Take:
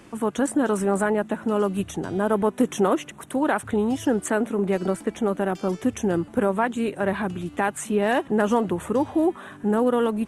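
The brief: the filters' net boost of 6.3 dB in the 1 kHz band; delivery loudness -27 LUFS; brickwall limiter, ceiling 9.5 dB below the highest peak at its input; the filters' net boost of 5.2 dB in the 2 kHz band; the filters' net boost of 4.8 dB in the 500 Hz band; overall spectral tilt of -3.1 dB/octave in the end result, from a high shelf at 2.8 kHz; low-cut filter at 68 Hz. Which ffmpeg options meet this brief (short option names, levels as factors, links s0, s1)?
-af "highpass=68,equalizer=f=500:t=o:g=4.5,equalizer=f=1000:t=o:g=6,equalizer=f=2000:t=o:g=7,highshelf=f=2800:g=-8.5,volume=0.708,alimiter=limit=0.168:level=0:latency=1"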